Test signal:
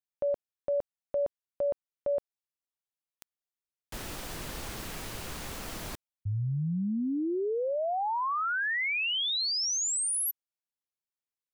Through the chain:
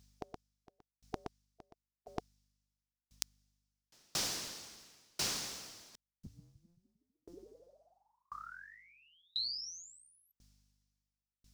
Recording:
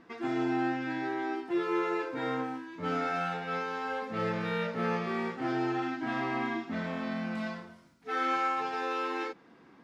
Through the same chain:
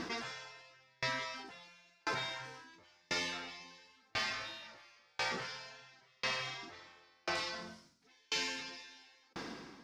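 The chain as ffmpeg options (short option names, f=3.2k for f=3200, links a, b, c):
-af "afftfilt=real='re*lt(hypot(re,im),0.0501)':imag='im*lt(hypot(re,im),0.0501)':win_size=1024:overlap=0.75,equalizer=f=5.4k:w=0.99:g=15,areverse,acompressor=threshold=-49dB:ratio=12:attack=17:release=57:knee=1:detection=peak,areverse,aeval=exprs='0.133*(cos(1*acos(clip(val(0)/0.133,-1,1)))-cos(1*PI/2))+0.0075*(cos(5*acos(clip(val(0)/0.133,-1,1)))-cos(5*PI/2))+0.00168*(cos(8*acos(clip(val(0)/0.133,-1,1)))-cos(8*PI/2))':c=same,aeval=exprs='val(0)+0.000141*(sin(2*PI*50*n/s)+sin(2*PI*2*50*n/s)/2+sin(2*PI*3*50*n/s)/3+sin(2*PI*4*50*n/s)/4+sin(2*PI*5*50*n/s)/5)':c=same,aeval=exprs='val(0)*pow(10,-40*if(lt(mod(0.96*n/s,1),2*abs(0.96)/1000),1-mod(0.96*n/s,1)/(2*abs(0.96)/1000),(mod(0.96*n/s,1)-2*abs(0.96)/1000)/(1-2*abs(0.96)/1000))/20)':c=same,volume=14dB"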